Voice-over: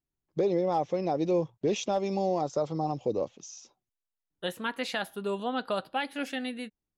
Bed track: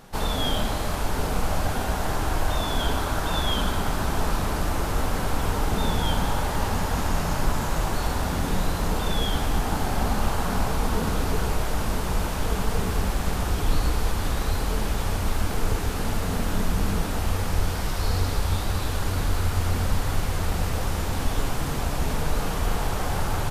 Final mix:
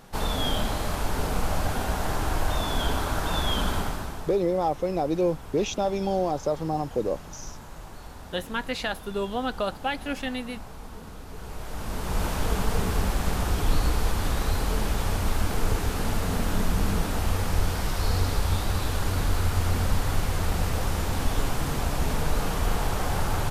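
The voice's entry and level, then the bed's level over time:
3.90 s, +2.5 dB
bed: 3.78 s -1.5 dB
4.40 s -17 dB
11.26 s -17 dB
12.25 s -0.5 dB

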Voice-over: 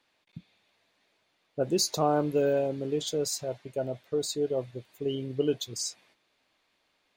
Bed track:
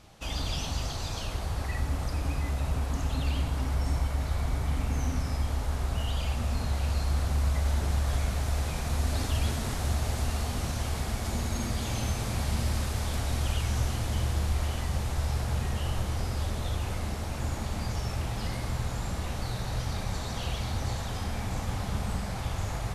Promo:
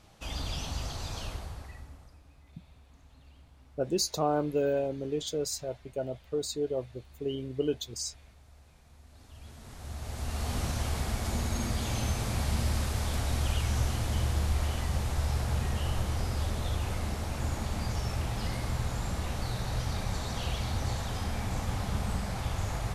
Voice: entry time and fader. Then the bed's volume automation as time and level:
2.20 s, -2.5 dB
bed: 1.27 s -3.5 dB
2.27 s -27.5 dB
9.08 s -27.5 dB
10.53 s -0.5 dB

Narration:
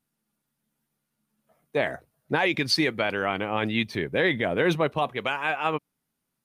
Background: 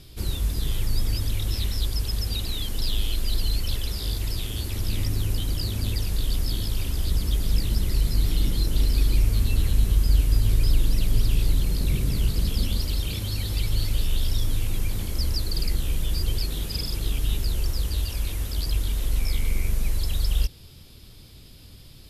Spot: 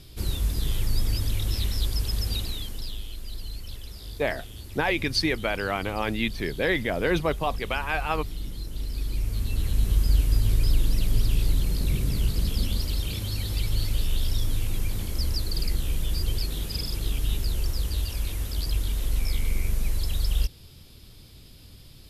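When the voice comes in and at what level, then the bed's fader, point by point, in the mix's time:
2.45 s, -1.5 dB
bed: 2.36 s -0.5 dB
3.05 s -11.5 dB
8.72 s -11.5 dB
9.96 s -1.5 dB

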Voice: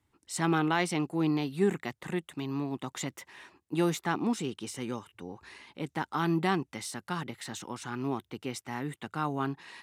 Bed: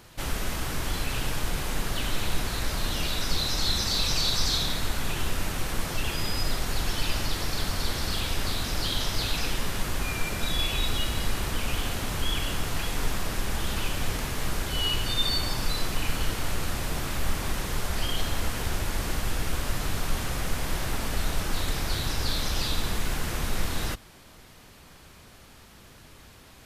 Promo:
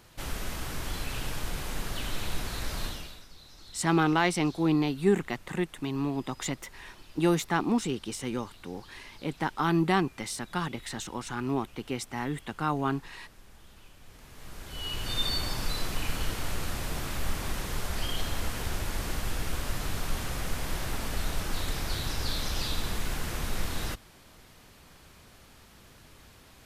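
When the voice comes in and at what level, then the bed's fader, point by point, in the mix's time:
3.45 s, +3.0 dB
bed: 2.85 s -5 dB
3.29 s -25 dB
14.01 s -25 dB
15.16 s -3.5 dB

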